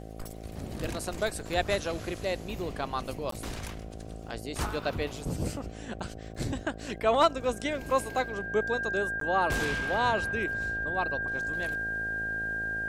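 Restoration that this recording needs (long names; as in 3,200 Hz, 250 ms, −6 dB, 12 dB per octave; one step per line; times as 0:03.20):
click removal
hum removal 54.6 Hz, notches 14
notch filter 1,600 Hz, Q 30
repair the gap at 0:03.31/0:09.20, 13 ms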